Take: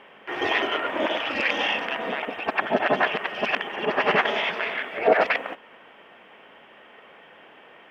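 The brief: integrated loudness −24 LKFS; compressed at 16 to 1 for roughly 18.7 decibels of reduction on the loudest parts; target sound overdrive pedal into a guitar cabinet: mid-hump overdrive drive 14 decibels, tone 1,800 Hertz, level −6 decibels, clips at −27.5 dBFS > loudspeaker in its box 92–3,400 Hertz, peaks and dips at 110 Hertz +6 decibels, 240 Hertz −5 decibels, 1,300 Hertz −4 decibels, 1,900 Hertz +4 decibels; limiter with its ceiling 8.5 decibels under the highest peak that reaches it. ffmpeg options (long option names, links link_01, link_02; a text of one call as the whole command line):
ffmpeg -i in.wav -filter_complex "[0:a]acompressor=threshold=-32dB:ratio=16,alimiter=level_in=3.5dB:limit=-24dB:level=0:latency=1,volume=-3.5dB,asplit=2[link_01][link_02];[link_02]highpass=frequency=720:poles=1,volume=14dB,asoftclip=type=tanh:threshold=-27.5dB[link_03];[link_01][link_03]amix=inputs=2:normalize=0,lowpass=frequency=1800:poles=1,volume=-6dB,highpass=92,equalizer=frequency=110:width_type=q:width=4:gain=6,equalizer=frequency=240:width_type=q:width=4:gain=-5,equalizer=frequency=1300:width_type=q:width=4:gain=-4,equalizer=frequency=1900:width_type=q:width=4:gain=4,lowpass=frequency=3400:width=0.5412,lowpass=frequency=3400:width=1.3066,volume=13dB" out.wav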